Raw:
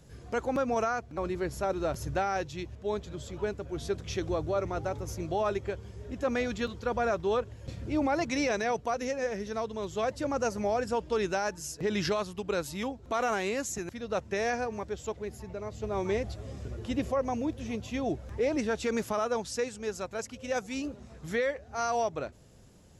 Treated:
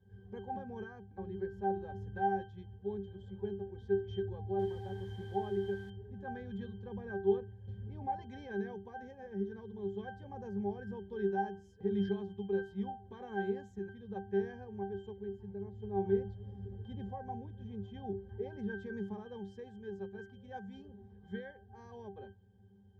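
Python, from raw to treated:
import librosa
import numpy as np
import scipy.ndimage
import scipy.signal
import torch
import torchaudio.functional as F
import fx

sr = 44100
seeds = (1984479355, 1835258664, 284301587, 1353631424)

y = fx.quant_dither(x, sr, seeds[0], bits=6, dither='triangular', at=(4.59, 5.9))
y = fx.octave_resonator(y, sr, note='G', decay_s=0.33)
y = F.gain(torch.from_numpy(y), 7.0).numpy()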